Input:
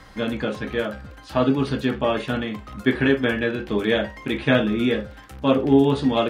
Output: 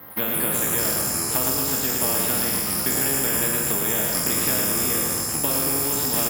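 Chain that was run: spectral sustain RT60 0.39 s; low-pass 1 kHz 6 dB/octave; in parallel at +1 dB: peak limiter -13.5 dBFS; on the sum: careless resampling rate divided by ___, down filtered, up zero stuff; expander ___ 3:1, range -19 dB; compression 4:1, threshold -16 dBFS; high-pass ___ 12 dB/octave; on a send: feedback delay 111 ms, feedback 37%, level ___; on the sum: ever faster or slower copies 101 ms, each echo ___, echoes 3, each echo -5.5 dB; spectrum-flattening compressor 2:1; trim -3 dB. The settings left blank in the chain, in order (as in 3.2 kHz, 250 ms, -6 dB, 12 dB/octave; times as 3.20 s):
3×, -23 dBFS, 160 Hz, -5 dB, -6 st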